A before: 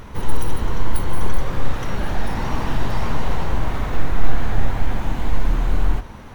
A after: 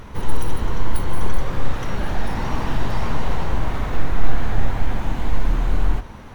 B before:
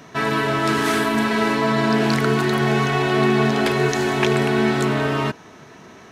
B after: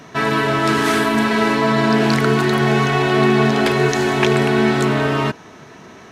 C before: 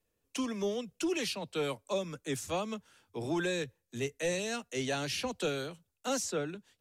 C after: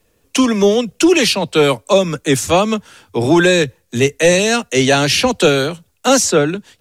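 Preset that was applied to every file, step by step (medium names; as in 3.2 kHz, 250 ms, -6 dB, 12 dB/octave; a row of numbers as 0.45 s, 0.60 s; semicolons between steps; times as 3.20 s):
treble shelf 11 kHz -3.5 dB; peak normalisation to -2 dBFS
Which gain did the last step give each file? -0.5 dB, +3.0 dB, +21.0 dB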